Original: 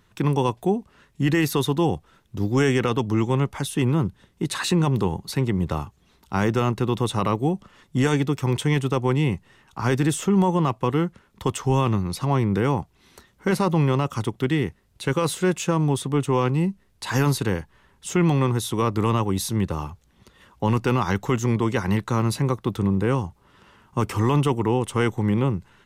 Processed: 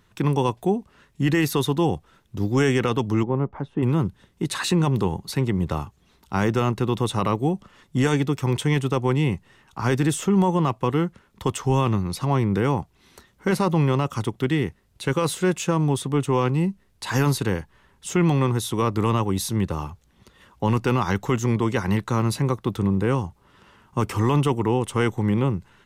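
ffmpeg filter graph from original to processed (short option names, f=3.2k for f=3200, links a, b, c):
-filter_complex "[0:a]asettb=1/sr,asplit=3[a][b][c];[a]atrim=end=3.234[d];[b]atrim=start=3.23:end=3.83,asetpts=PTS-STARTPTS,afade=t=in:d=0.004:c=qsin,afade=t=out:st=0.596:d=0.004:c=qsin,lowpass=1k,equalizer=f=88:t=o:w=0.85:g=-8.5[e];[c]atrim=start=3.826[f];[d][e]acrossfade=d=0.004:c1=hsin:c2=qsin[g];[g][f]acrossfade=d=0.004:c1=qsin:c2=hsin"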